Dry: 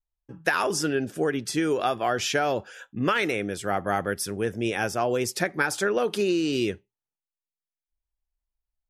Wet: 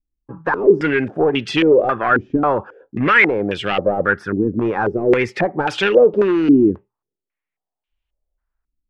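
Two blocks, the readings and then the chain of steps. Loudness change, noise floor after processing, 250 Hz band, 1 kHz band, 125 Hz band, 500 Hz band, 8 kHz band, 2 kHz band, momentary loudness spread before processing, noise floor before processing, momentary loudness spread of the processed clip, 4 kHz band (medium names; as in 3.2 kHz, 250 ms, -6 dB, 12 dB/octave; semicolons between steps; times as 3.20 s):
+9.5 dB, under -85 dBFS, +11.0 dB, +7.5 dB, +7.5 dB, +10.5 dB, under -10 dB, +9.5 dB, 5 LU, under -85 dBFS, 8 LU, +4.0 dB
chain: hard clipper -21 dBFS, distortion -13 dB; dynamic bell 680 Hz, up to -7 dB, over -44 dBFS, Q 4.5; step-sequenced low-pass 3.7 Hz 290–2900 Hz; trim +8 dB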